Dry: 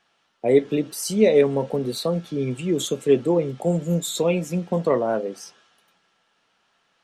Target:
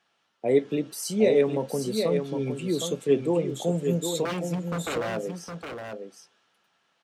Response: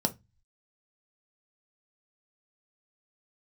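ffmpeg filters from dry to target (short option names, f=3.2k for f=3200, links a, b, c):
-filter_complex "[0:a]asettb=1/sr,asplit=3[a][b][c];[a]atrim=end=4.254[d];[b]atrim=start=4.25:end=5.17,asetpts=PTS-STARTPTS,afade=t=in:d=0.004:c=qsin,afade=t=out:st=0.916:d=0.004:c=qsin,aeval=exprs='0.0944*(abs(mod(val(0)/0.0944+3,4)-2)-1)':c=same[e];[c]atrim=start=5.166[f];[d][e]acrossfade=d=0.004:c1=hsin:c2=qsin[g];[g][f]acrossfade=d=0.004:c1=qsin:c2=hsin,highpass=61,asplit=2[h][i];[i]aecho=0:1:762:0.473[j];[h][j]amix=inputs=2:normalize=0,volume=-4.5dB"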